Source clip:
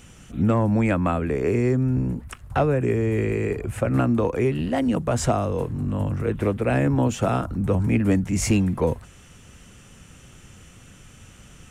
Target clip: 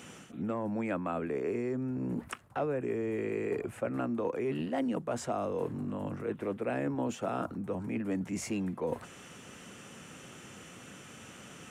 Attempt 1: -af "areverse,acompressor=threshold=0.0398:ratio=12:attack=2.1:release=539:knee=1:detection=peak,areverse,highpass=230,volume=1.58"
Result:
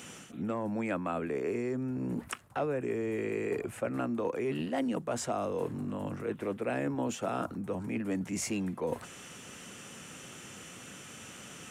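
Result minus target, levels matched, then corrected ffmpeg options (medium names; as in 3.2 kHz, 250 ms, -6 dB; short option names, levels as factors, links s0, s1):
4 kHz band +3.5 dB
-af "areverse,acompressor=threshold=0.0398:ratio=12:attack=2.1:release=539:knee=1:detection=peak,areverse,highpass=230,highshelf=f=2700:g=-6,volume=1.58"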